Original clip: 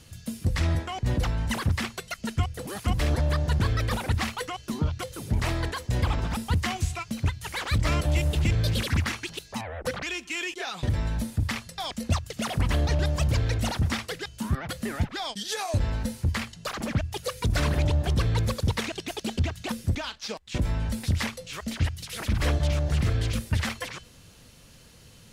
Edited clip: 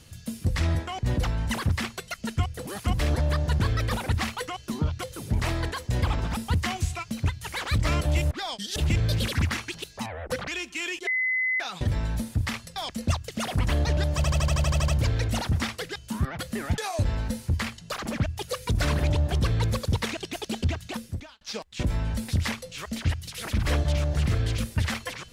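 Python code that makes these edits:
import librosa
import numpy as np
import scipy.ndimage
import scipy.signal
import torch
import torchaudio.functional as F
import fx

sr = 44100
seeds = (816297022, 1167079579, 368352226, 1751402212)

y = fx.edit(x, sr, fx.insert_tone(at_s=10.62, length_s=0.53, hz=2030.0, db=-22.5),
    fx.stutter(start_s=13.18, slice_s=0.08, count=10),
    fx.move(start_s=15.08, length_s=0.45, to_s=8.31),
    fx.fade_out_span(start_s=19.54, length_s=0.62), tone=tone)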